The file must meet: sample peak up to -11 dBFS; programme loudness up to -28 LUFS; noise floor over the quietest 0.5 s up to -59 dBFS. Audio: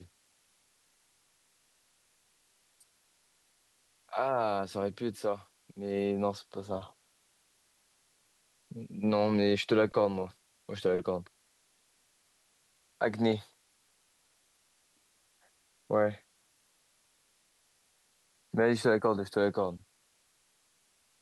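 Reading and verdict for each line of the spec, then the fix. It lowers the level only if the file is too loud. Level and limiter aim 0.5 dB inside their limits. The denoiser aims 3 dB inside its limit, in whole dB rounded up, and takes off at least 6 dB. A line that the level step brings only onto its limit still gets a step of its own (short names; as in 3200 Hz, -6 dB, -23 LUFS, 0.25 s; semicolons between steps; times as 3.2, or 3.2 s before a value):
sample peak -15.0 dBFS: OK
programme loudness -31.5 LUFS: OK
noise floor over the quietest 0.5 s -71 dBFS: OK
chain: none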